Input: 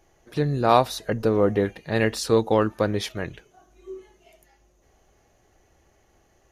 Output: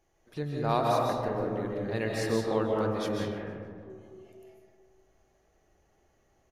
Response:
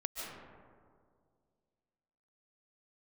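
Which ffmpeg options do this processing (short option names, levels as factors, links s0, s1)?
-filter_complex "[0:a]asplit=3[s0][s1][s2];[s0]afade=t=out:st=1.15:d=0.02[s3];[s1]tremolo=f=91:d=0.919,afade=t=in:st=1.15:d=0.02,afade=t=out:st=1.76:d=0.02[s4];[s2]afade=t=in:st=1.76:d=0.02[s5];[s3][s4][s5]amix=inputs=3:normalize=0,asettb=1/sr,asplit=3[s6][s7][s8];[s6]atrim=end=3.254[s9];[s7]atrim=start=3.25:end=3.9,asetpts=PTS-STARTPTS,afade=t=in:d=0.004:c=qsin,afade=t=out:st=0.646:d=0.004:c=qsin,lowpass=2600[s10];[s8]atrim=start=3.896[s11];[s9][s10]acrossfade=d=0.004:c1=hsin:c2=qsin[s12];[s12][s11]acrossfade=d=0.004:c1=qsin:c2=hsin,aecho=1:1:153|306|459|612:0.0794|0.0405|0.0207|0.0105[s13];[1:a]atrim=start_sample=2205[s14];[s13][s14]afir=irnorm=-1:irlink=0,volume=0.376"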